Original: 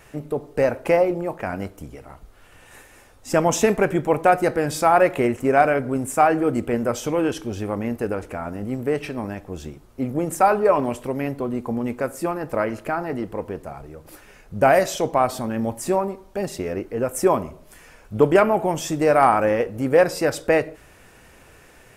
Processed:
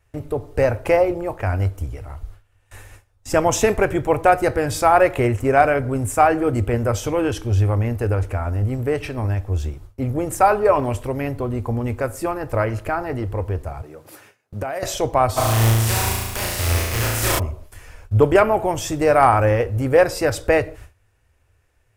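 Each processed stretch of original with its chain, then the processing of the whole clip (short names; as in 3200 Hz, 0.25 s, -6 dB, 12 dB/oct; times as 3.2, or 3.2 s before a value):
13.81–14.83 HPF 150 Hz 24 dB/oct + compressor 12:1, threshold -24 dBFS
15.36–17.38 spectral contrast lowered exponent 0.32 + compressor 2:1, threshold -28 dBFS + flutter echo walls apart 6.1 m, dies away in 1.3 s
whole clip: gate with hold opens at -37 dBFS; resonant low shelf 130 Hz +9.5 dB, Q 3; gain +2 dB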